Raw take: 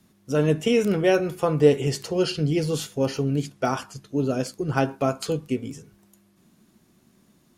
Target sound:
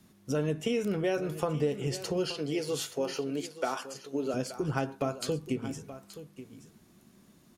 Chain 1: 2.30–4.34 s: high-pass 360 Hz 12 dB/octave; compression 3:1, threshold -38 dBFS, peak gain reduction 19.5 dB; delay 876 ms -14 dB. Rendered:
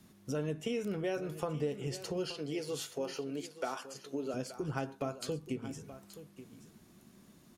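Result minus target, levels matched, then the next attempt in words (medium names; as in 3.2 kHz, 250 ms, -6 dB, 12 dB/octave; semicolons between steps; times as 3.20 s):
compression: peak gain reduction +5.5 dB
2.30–4.34 s: high-pass 360 Hz 12 dB/octave; compression 3:1, threshold -29.5 dBFS, peak gain reduction 14 dB; delay 876 ms -14 dB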